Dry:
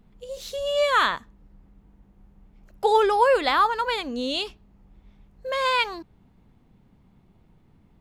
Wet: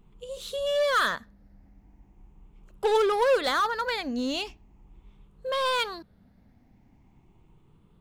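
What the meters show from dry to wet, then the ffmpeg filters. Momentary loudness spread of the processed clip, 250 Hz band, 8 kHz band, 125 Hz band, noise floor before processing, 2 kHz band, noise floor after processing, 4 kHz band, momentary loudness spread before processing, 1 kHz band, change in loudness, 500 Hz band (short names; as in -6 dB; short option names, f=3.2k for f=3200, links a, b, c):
15 LU, 0.0 dB, +0.5 dB, n/a, -59 dBFS, -3.0 dB, -61 dBFS, -3.0 dB, 16 LU, -6.0 dB, -3.5 dB, -2.0 dB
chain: -filter_complex "[0:a]afftfilt=real='re*pow(10,8/40*sin(2*PI*(0.68*log(max(b,1)*sr/1024/100)/log(2)-(0.4)*(pts-256)/sr)))':imag='im*pow(10,8/40*sin(2*PI*(0.68*log(max(b,1)*sr/1024/100)/log(2)-(0.4)*(pts-256)/sr)))':win_size=1024:overlap=0.75,asplit=2[a][b];[b]aeval=exprs='0.0891*(abs(mod(val(0)/0.0891+3,4)-2)-1)':c=same,volume=-5dB[c];[a][c]amix=inputs=2:normalize=0,volume=-6dB"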